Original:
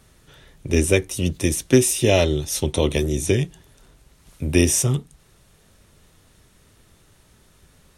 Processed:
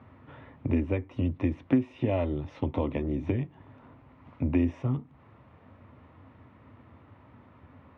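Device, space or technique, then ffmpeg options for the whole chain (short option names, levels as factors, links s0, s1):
bass amplifier: -af "acompressor=threshold=0.0316:ratio=4,highpass=f=84:w=0.5412,highpass=f=84:w=1.3066,equalizer=f=91:t=q:w=4:g=4,equalizer=f=170:t=q:w=4:g=-9,equalizer=f=260:t=q:w=4:g=8,equalizer=f=400:t=q:w=4:g=-8,equalizer=f=1000:t=q:w=4:g=5,equalizer=f=1600:t=q:w=4:g=-8,lowpass=f=2000:w=0.5412,lowpass=f=2000:w=1.3066,volume=1.68"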